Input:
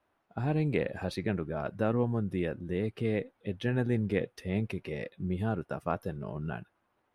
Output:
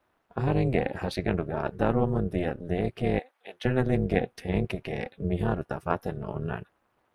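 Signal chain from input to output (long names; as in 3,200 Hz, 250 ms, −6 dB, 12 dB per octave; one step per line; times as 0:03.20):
amplitude modulation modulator 260 Hz, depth 90%
0:03.19–0:03.65: high-pass filter 850 Hz 12 dB per octave
level +8 dB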